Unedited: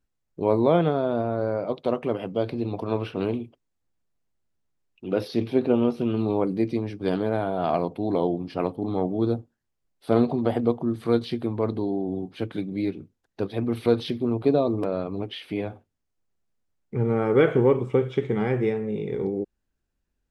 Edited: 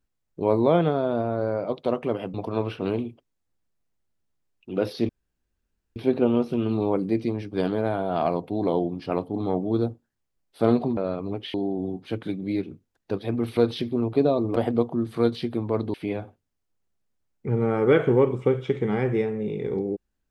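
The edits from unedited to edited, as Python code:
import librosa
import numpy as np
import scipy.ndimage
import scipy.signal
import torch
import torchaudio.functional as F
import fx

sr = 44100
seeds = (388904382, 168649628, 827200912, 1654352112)

y = fx.edit(x, sr, fx.cut(start_s=2.34, length_s=0.35),
    fx.insert_room_tone(at_s=5.44, length_s=0.87),
    fx.swap(start_s=10.45, length_s=1.38, other_s=14.85, other_length_s=0.57), tone=tone)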